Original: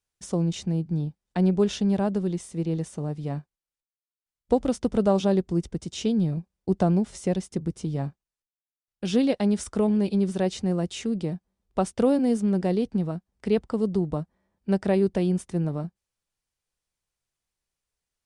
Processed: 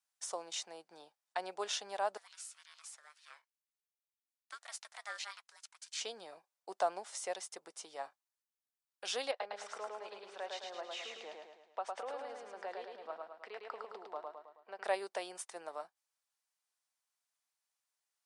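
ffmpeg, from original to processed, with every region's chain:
-filter_complex "[0:a]asettb=1/sr,asplit=3[s0][s1][s2];[s0]atrim=end=2.174[s3];[s1]atrim=start=2.17:end=6.01,asetpts=PTS-STARTPTS,afade=t=in:d=0.004:c=qsin,afade=t=out:st=3.836:d=0.004:c=qsin,highpass=f=1100:w=0.5412,highpass=f=1100:w=1.3066,aeval=exprs='val(0)*sin(2*PI*610*n/s)':c=same[s4];[s2]atrim=start=6.006[s5];[s3][s4]acrossfade=d=0.004:c1=hsin:c2=qsin[s6];[s6][s5]acrossfade=d=0.004:c1=qsin:c2=hsin,asettb=1/sr,asplit=3[s7][s8][s9];[s7]atrim=end=9.314[s10];[s8]atrim=start=9.31:end=14.84,asetpts=PTS-STARTPTS,afade=t=in:d=0.004:c=qsin,afade=t=out:st=5.526:d=0.004:c=qsin,acompressor=threshold=0.0501:ratio=5:attack=3.2:release=140:knee=1:detection=peak,highpass=200,lowpass=3000,aecho=1:1:107|214|321|428|535|642|749:0.708|0.354|0.177|0.0885|0.0442|0.0221|0.0111,atrim=end_sample=243873[s11];[s9]atrim=start=14.836[s12];[s10][s11]acrossfade=d=0.004:c1=hsin:c2=qsin[s13];[s13][s12]acrossfade=d=0.004:c1=qsin:c2=hsin,highpass=f=690:w=0.5412,highpass=f=690:w=1.3066,equalizer=f=2700:w=1.4:g=-3,volume=0.891"

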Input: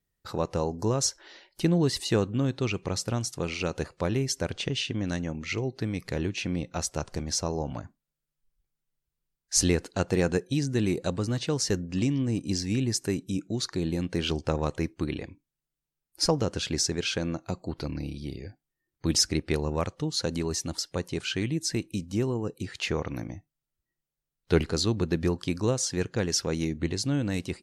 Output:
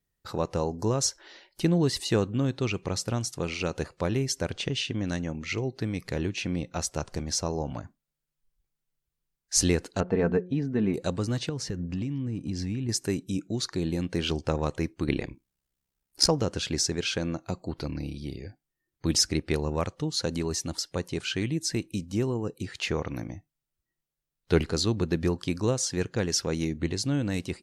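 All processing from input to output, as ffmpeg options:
-filter_complex "[0:a]asettb=1/sr,asplit=3[s0][s1][s2];[s0]atrim=end=10.004[s3];[s1]atrim=start=10:end=10.94,asetpts=PTS-STARTPTS,afade=t=in:d=0.004:c=qsin,afade=t=out:st=0.936:d=0.004:c=qsin,lowpass=1600,aecho=1:1:4.5:0.51,atrim=end_sample=41454,bandreject=f=180.7:t=h:w=4,bandreject=f=361.4:t=h:w=4,bandreject=f=542.1:t=h:w=4[s4];[s2]atrim=start=10.936[s5];[s3][s4]acrossfade=d=0.004:c1=hsin:c2=qsin[s6];[s6][s5]acrossfade=d=0.004:c1=qsin:c2=hsin,asettb=1/sr,asplit=3[s7][s8][s9];[s7]atrim=end=11.494[s10];[s8]atrim=start=11.49:end=12.89,asetpts=PTS-STARTPTS,afade=t=in:d=0.004:c=qsin,afade=t=out:st=1.396:d=0.004:c=qsin,bass=f=250:g=5,treble=f=4000:g=-9,acompressor=threshold=0.0447:ratio=10:attack=3.2:release=140:knee=1:detection=peak[s11];[s9]atrim=start=12.886[s12];[s10][s11]acrossfade=d=0.004:c1=hsin:c2=qsin[s13];[s13][s12]acrossfade=d=0.004:c1=qsin:c2=hsin,asettb=1/sr,asplit=3[s14][s15][s16];[s14]atrim=end=15.084[s17];[s15]atrim=start=15.08:end=16.28,asetpts=PTS-STARTPTS,afade=t=in:d=0.004:c=qsin,afade=t=out:st=1.196:d=0.004:c=qsin,acontrast=83,aeval=exprs='val(0)*sin(2*PI*33*n/s)':c=same[s18];[s16]atrim=start=16.276[s19];[s17][s18]acrossfade=d=0.004:c1=hsin:c2=qsin[s20];[s20][s19]acrossfade=d=0.004:c1=qsin:c2=hsin"

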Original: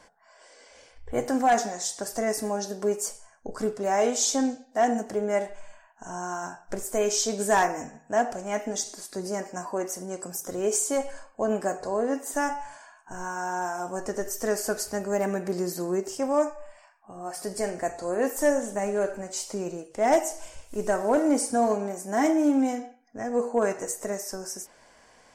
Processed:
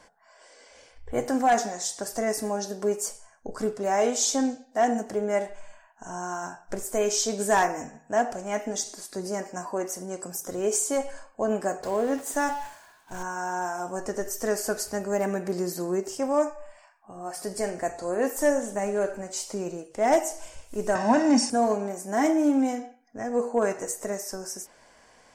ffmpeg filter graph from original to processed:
-filter_complex "[0:a]asettb=1/sr,asplit=3[s0][s1][s2];[s0]atrim=end=11.824[s3];[s1]atrim=start=11.82:end=13.23,asetpts=PTS-STARTPTS,afade=t=in:d=0.004:c=qsin,afade=t=out:st=1.406:d=0.004:c=qsin,aeval=exprs='val(0)+0.5*0.0119*sgn(val(0))':c=same,agate=range=0.0224:threshold=0.02:ratio=3:release=100:detection=peak[s4];[s2]atrim=start=13.226[s5];[s3][s4]acrossfade=d=0.004:c1=hsin:c2=qsin[s6];[s6][s5]acrossfade=d=0.004:c1=qsin:c2=hsin,asettb=1/sr,asplit=3[s7][s8][s9];[s7]atrim=end=20.954[s10];[s8]atrim=start=20.95:end=21.5,asetpts=PTS-STARTPTS,afade=t=in:d=0.004:c=qsin,afade=t=out:st=0.546:d=0.004:c=qsin,aeval=exprs='val(0)+0.5*0.00891*sgn(val(0))':c=same,highpass=120,equalizer=f=120:t=q:w=4:g=7,equalizer=f=230:t=q:w=4:g=9,equalizer=f=1500:t=q:w=4:g=7,equalizer=f=2400:t=q:w=4:g=8,equalizer=f=5400:t=q:w=4:g=8,lowpass=f=7500:w=0.5412,lowpass=f=7500:w=1.3066,aecho=1:1:1.1:0.8,atrim=end_sample=24255[s11];[s9]atrim=start=21.496[s12];[s10][s11]acrossfade=d=0.004:c1=hsin:c2=qsin[s13];[s13][s12]acrossfade=d=0.004:c1=qsin:c2=hsin"

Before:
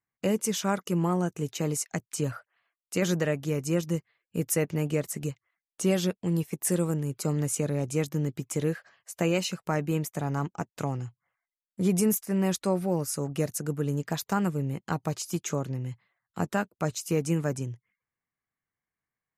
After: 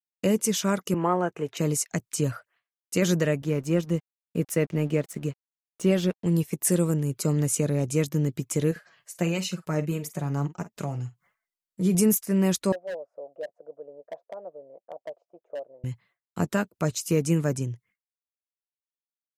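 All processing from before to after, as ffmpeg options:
-filter_complex "[0:a]asettb=1/sr,asplit=3[s0][s1][s2];[s0]atrim=end=0.944[s3];[s1]atrim=start=0.94:end=1.57,asetpts=PTS-STARTPTS,afade=t=in:d=0.004:c=qsin,afade=t=out:st=0.626:d=0.004:c=qsin,acrossover=split=430 2500:gain=0.158 1 0.0794[s4][s5][s6];[s4][s5][s6]amix=inputs=3:normalize=0,acontrast=70[s7];[s2]atrim=start=1.566[s8];[s3][s7]acrossfade=d=0.004:c1=hsin:c2=qsin[s9];[s9][s8]acrossfade=d=0.004:c1=qsin:c2=hsin,asettb=1/sr,asplit=3[s10][s11][s12];[s10]atrim=end=3.424[s13];[s11]atrim=start=3.42:end=6.26,asetpts=PTS-STARTPTS,afade=t=in:d=0.004:c=qsin,afade=t=out:st=2.836:d=0.004:c=qsin,highpass=110,bass=f=250:g=0,treble=f=4000:g=-9,aeval=exprs='sgn(val(0))*max(abs(val(0))-0.00266,0)':c=same[s14];[s12]atrim=start=6.256[s15];[s13][s14]acrossfade=d=0.004:c1=hsin:c2=qsin[s16];[s16][s15]acrossfade=d=0.004:c1=qsin:c2=hsin,asettb=1/sr,asplit=3[s17][s18][s19];[s17]atrim=end=8.714[s20];[s18]atrim=start=8.71:end=11.95,asetpts=PTS-STARTPTS,afade=t=in:d=0.004:c=qsin,afade=t=out:st=3.236:d=0.004:c=qsin,acompressor=mode=upward:threshold=0.00355:ratio=2.5:attack=3.2:release=140:knee=2.83:detection=peak,flanger=delay=4.5:depth=2.4:regen=32:speed=1.5:shape=sinusoidal,asplit=2[s21][s22];[s22]adelay=48,volume=0.2[s23];[s21][s23]amix=inputs=2:normalize=0,atrim=end_sample=142884[s24];[s19]atrim=start=11.946[s25];[s20][s24]acrossfade=d=0.004:c1=hsin:c2=qsin[s26];[s26][s25]acrossfade=d=0.004:c1=qsin:c2=hsin,asettb=1/sr,asplit=3[s27][s28][s29];[s27]atrim=end=12.724[s30];[s28]atrim=start=12.72:end=15.84,asetpts=PTS-STARTPTS,afade=t=in:d=0.004:c=qsin,afade=t=out:st=3.116:d=0.004:c=qsin,asuperpass=centerf=610:order=4:qfactor=3.1,aeval=exprs='0.0316*(abs(mod(val(0)/0.0316+3,4)-2)-1)':c=same[s31];[s29]atrim=start=15.836[s32];[s30][s31]acrossfade=d=0.004:c1=hsin:c2=qsin[s33];[s33][s32]acrossfade=d=0.004:c1=qsin:c2=hsin,agate=range=0.0224:threshold=0.00126:ratio=3:detection=peak,equalizer=f=1200:t=o:w=2.1:g=-3,bandreject=f=790:w=12,volume=1.58"

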